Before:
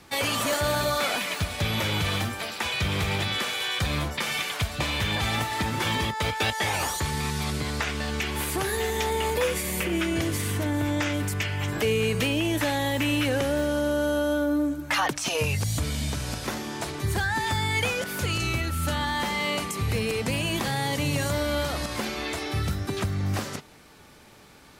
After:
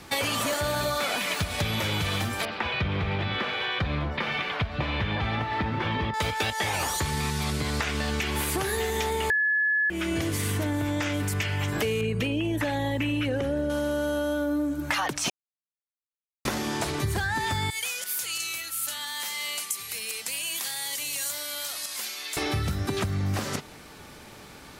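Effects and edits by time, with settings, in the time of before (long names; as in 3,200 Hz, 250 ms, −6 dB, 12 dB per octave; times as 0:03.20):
0:02.45–0:06.14: high-frequency loss of the air 330 metres
0:09.30–0:09.90: beep over 1,710 Hz −12 dBFS
0:12.01–0:13.70: spectral envelope exaggerated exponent 1.5
0:15.30–0:16.45: silence
0:17.70–0:22.37: first difference
whole clip: downward compressor, threshold −30 dBFS; level +5.5 dB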